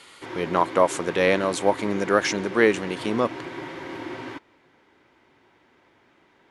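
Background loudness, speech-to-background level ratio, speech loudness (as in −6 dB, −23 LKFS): −35.5 LKFS, 12.5 dB, −23.0 LKFS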